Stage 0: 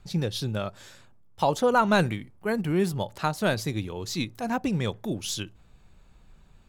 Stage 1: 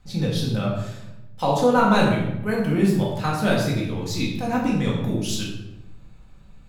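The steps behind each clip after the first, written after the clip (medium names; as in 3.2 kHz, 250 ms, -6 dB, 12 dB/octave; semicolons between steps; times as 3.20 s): simulated room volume 360 m³, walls mixed, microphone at 2 m; trim -2 dB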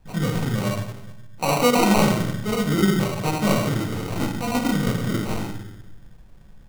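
sample-and-hold 26×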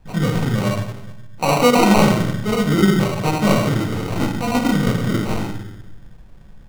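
treble shelf 6.3 kHz -5.5 dB; trim +4.5 dB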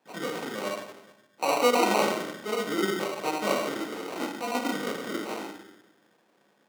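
high-pass 290 Hz 24 dB/octave; trim -7.5 dB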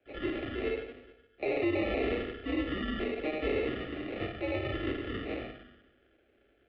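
mistuned SSB -150 Hz 200–3200 Hz; peak limiter -20.5 dBFS, peak gain reduction 10 dB; static phaser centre 400 Hz, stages 4; trim +2 dB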